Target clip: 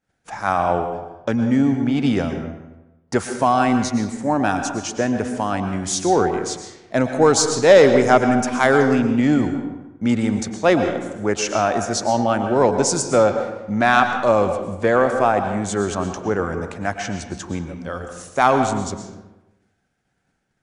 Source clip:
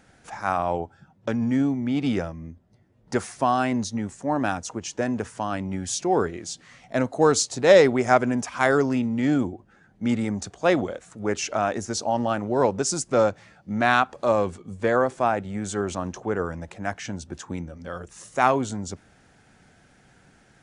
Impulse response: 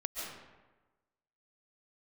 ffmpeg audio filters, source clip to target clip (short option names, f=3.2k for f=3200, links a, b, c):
-filter_complex "[0:a]acontrast=39,agate=range=-33dB:threshold=-37dB:ratio=3:detection=peak,asplit=2[a][b];[1:a]atrim=start_sample=2205,asetrate=52920,aresample=44100[c];[b][c]afir=irnorm=-1:irlink=0,volume=-2dB[d];[a][d]amix=inputs=2:normalize=0,volume=-4dB"